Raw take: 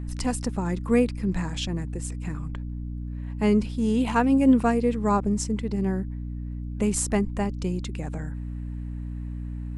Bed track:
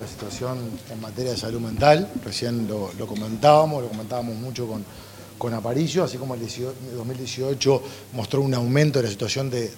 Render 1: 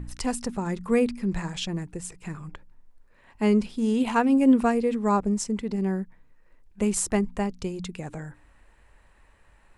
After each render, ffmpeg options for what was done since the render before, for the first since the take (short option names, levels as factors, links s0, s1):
-af "bandreject=f=60:t=h:w=4,bandreject=f=120:t=h:w=4,bandreject=f=180:t=h:w=4,bandreject=f=240:t=h:w=4,bandreject=f=300:t=h:w=4"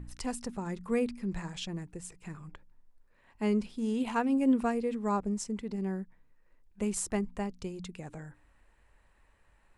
-af "volume=0.422"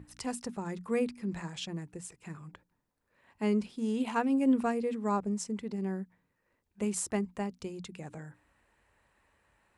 -af "highpass=82,bandreject=f=60:t=h:w=6,bandreject=f=120:t=h:w=6,bandreject=f=180:t=h:w=6,bandreject=f=240:t=h:w=6"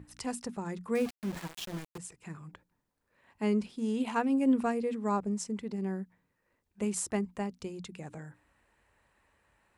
-filter_complex "[0:a]asettb=1/sr,asplit=3[s0][s1][s2];[s0]atrim=end=0.954[s3];[s1]atrim=start=0.95:end=1.98,asetpts=PTS-STARTPTS,afade=t=in:d=0.004:c=qsin,afade=t=out:st=1.026:d=0.004:c=qsin,aeval=exprs='val(0)*gte(abs(val(0)),0.0119)':c=same[s4];[s2]atrim=start=1.976[s5];[s3][s4]acrossfade=d=0.004:c1=hsin:c2=qsin[s6];[s6][s5]acrossfade=d=0.004:c1=qsin:c2=hsin"